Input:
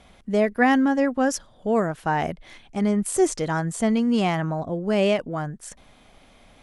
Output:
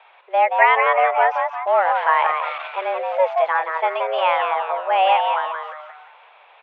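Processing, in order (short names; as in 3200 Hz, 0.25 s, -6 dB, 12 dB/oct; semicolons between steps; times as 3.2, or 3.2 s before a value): 1.67–3 zero-crossing step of -33 dBFS; frequency-shifting echo 0.176 s, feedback 40%, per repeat +140 Hz, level -6 dB; mistuned SSB +180 Hz 420–2900 Hz; gain +6 dB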